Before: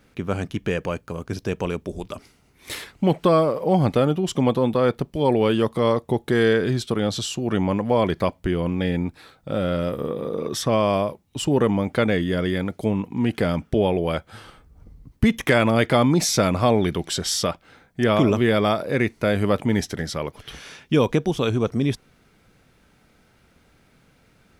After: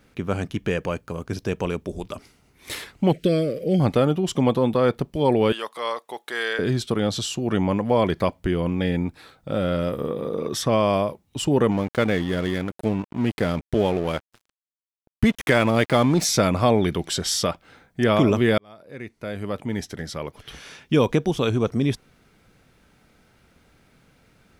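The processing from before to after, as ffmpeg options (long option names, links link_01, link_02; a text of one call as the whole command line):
ffmpeg -i in.wav -filter_complex "[0:a]asettb=1/sr,asplit=3[link_01][link_02][link_03];[link_01]atrim=end=3.124[link_04];[link_02]atrim=start=3.12:end=3.8,asetpts=PTS-STARTPTS,afade=type=in:duration=0.004:curve=qsin,afade=type=out:start_time=0.676:duration=0.004:curve=qsin,asuperstop=centerf=950:order=4:qfactor=0.74[link_05];[link_03]atrim=start=3.796[link_06];[link_04][link_05]acrossfade=duration=0.004:curve1=hsin:curve2=qsin[link_07];[link_07][link_06]acrossfade=duration=0.004:curve1=qsin:curve2=hsin,asettb=1/sr,asplit=3[link_08][link_09][link_10];[link_08]atrim=end=5.524[link_11];[link_09]atrim=start=5.52:end=6.59,asetpts=PTS-STARTPTS,afade=type=in:duration=0.004:curve=qsin,afade=type=out:start_time=1.066:duration=0.004:curve=qsin,highpass=890[link_12];[link_10]atrim=start=6.586[link_13];[link_11][link_12]acrossfade=duration=0.004:curve1=hsin:curve2=qsin[link_14];[link_14][link_13]acrossfade=duration=0.004:curve1=qsin:curve2=hsin,asettb=1/sr,asplit=3[link_15][link_16][link_17];[link_15]atrim=end=11.714[link_18];[link_16]atrim=start=11.71:end=16.25,asetpts=PTS-STARTPTS,afade=type=in:duration=0.004:curve=qsin,afade=type=out:start_time=4.536:duration=0.004:curve=qsin,aeval=exprs='sgn(val(0))*max(abs(val(0))-0.0178,0)':channel_layout=same[link_19];[link_17]atrim=start=16.246[link_20];[link_18][link_19]acrossfade=duration=0.004:curve1=hsin:curve2=qsin[link_21];[link_21][link_20]acrossfade=duration=0.004:curve1=qsin:curve2=hsin,asplit=2[link_22][link_23];[link_22]atrim=end=18.58,asetpts=PTS-STARTPTS,afade=type=out:start_time=18.576:duration=0.004:curve=hsin[link_24];[link_23]atrim=start=18.58,asetpts=PTS-STARTPTS,afade=type=in:duration=2.43[link_25];[link_24][link_25]concat=n=2:v=0:a=1" out.wav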